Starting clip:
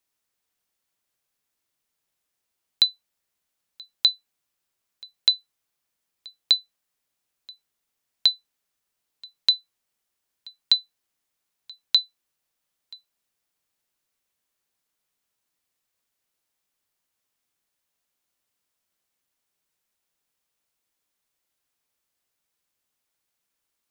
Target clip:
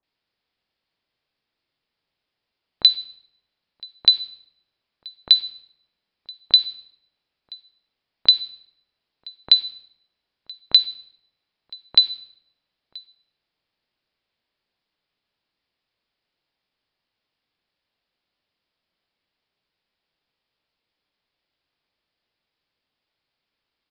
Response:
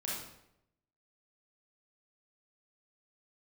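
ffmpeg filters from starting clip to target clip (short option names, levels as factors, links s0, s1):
-filter_complex "[0:a]asplit=2[s0][s1];[1:a]atrim=start_sample=2205,adelay=17[s2];[s1][s2]afir=irnorm=-1:irlink=0,volume=0.168[s3];[s0][s3]amix=inputs=2:normalize=0,aresample=11025,aresample=44100,acrossover=split=1300[s4][s5];[s5]adelay=30[s6];[s4][s6]amix=inputs=2:normalize=0,volume=1.78"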